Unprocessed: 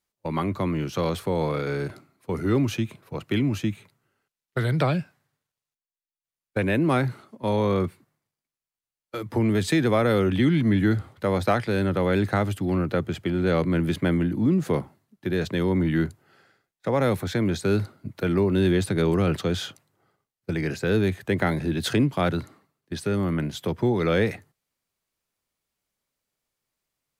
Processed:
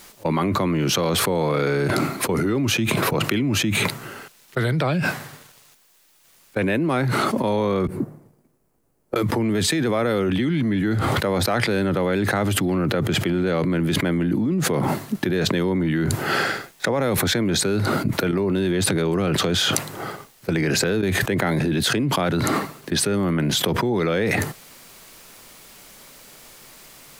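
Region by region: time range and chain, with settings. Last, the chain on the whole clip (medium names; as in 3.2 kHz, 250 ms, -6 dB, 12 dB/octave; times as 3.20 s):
7.87–9.16 s: FFT filter 380 Hz 0 dB, 3.5 kHz -29 dB, 9.9 kHz -20 dB + compression 16:1, threshold -49 dBFS
18.31–21.03 s: compression 12:1, threshold -35 dBFS + hard clipper -30.5 dBFS
whole clip: peaking EQ 73 Hz -10 dB 1.1 oct; level flattener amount 100%; trim -2.5 dB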